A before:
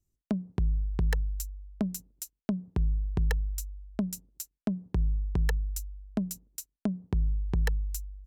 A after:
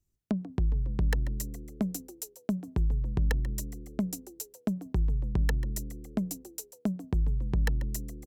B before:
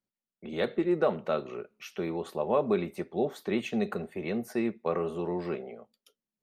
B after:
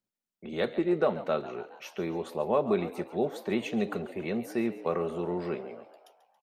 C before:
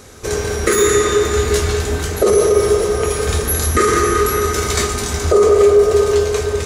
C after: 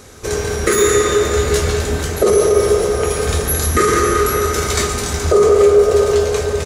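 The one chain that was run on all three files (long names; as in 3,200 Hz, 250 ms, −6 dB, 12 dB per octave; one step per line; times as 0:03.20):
echo with shifted repeats 139 ms, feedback 57%, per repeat +76 Hz, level −15.5 dB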